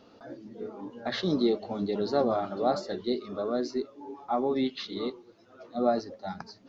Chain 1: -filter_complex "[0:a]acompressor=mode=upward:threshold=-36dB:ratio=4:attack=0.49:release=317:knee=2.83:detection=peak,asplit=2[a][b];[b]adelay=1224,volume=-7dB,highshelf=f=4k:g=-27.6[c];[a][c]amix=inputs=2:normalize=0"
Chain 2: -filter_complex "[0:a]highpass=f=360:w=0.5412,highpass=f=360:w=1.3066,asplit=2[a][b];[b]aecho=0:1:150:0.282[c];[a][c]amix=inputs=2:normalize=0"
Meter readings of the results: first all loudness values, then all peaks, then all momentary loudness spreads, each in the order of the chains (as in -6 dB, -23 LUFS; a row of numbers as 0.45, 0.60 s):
-30.0, -32.0 LUFS; -12.0, -13.5 dBFS; 14, 15 LU